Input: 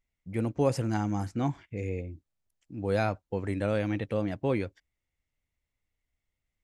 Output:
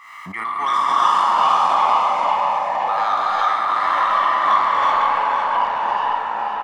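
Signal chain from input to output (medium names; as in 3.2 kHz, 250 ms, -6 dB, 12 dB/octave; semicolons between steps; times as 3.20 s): spectral sustain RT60 1.40 s; low-pass 1.7 kHz 6 dB/octave; comb 1 ms, depth 88%; in parallel at -3 dB: peak limiter -22 dBFS, peak gain reduction 9.5 dB; on the sum: resonant high-pass 1.2 kHz, resonance Q 12; saturation -16 dBFS, distortion -14 dB; ever faster or slower copies 253 ms, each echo -3 st, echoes 2; on a send: feedback delay 505 ms, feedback 39%, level -6 dB; on the sum: gated-style reverb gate 400 ms rising, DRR -3.5 dB; swell ahead of each attack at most 46 dB/s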